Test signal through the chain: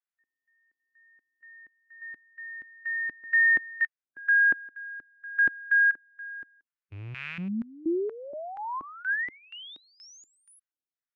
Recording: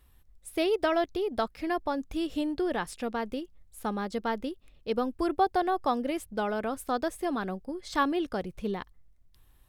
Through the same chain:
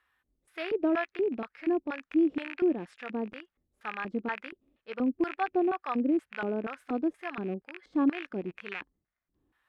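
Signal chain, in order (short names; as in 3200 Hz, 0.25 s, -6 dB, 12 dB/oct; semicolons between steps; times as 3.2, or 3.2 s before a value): rattling part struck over -45 dBFS, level -22 dBFS; LFO band-pass square 2.1 Hz 300–1600 Hz; harmonic-percussive split harmonic +8 dB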